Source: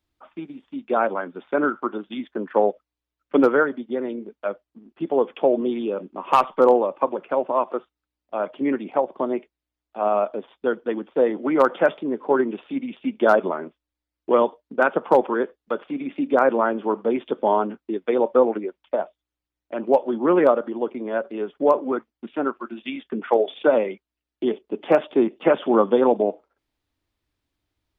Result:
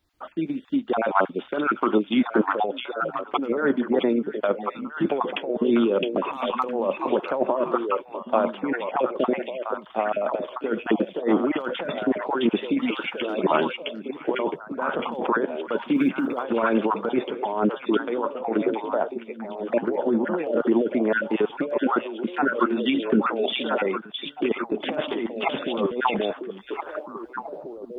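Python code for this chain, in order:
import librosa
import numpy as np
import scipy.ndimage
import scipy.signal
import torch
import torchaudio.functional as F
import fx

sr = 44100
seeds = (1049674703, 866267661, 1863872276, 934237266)

y = fx.spec_dropout(x, sr, seeds[0], share_pct=21)
y = fx.tilt_shelf(y, sr, db=-6.0, hz=970.0, at=(12.77, 13.25))
y = fx.over_compress(y, sr, threshold_db=-27.0, ratio=-1.0)
y = fx.quant_float(y, sr, bits=6, at=(15.95, 16.43), fade=0.02)
y = fx.echo_stepped(y, sr, ms=662, hz=3300.0, octaves=-1.4, feedback_pct=70, wet_db=0)
y = fx.am_noise(y, sr, seeds[1], hz=5.7, depth_pct=65)
y = y * librosa.db_to_amplitude(7.0)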